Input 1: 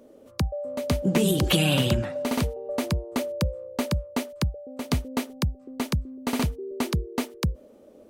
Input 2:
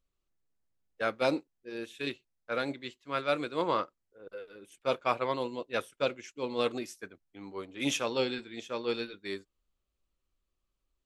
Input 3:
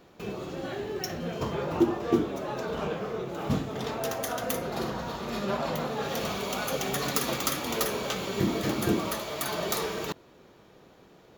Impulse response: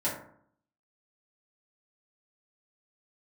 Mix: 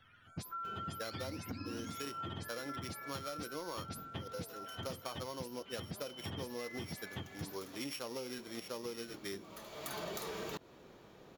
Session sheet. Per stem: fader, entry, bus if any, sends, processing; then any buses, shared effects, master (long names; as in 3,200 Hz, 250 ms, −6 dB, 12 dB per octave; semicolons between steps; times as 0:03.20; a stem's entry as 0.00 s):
−6.5 dB, 0.00 s, no bus, no send, frequency axis turned over on the octave scale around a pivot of 890 Hz; downward compressor, threshold −28 dBFS, peak gain reduction 13 dB; high-shelf EQ 4,400 Hz −6.5 dB
−0.5 dB, 0.00 s, bus A, no send, samples sorted by size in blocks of 8 samples
−2.5 dB, 0.45 s, bus A, no send, automatic ducking −21 dB, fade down 0.70 s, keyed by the second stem
bus A: 0.0 dB, soft clipping −19.5 dBFS, distortion −19 dB; downward compressor, threshold −32 dBFS, peak gain reduction 7 dB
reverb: not used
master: downward compressor, threshold −39 dBFS, peak gain reduction 9.5 dB